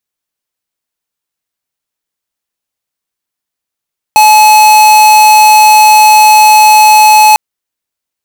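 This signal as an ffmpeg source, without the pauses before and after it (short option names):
-f lavfi -i "aevalsrc='0.708*(2*lt(mod(856*t,1),0.5)-1)':d=3.2:s=44100"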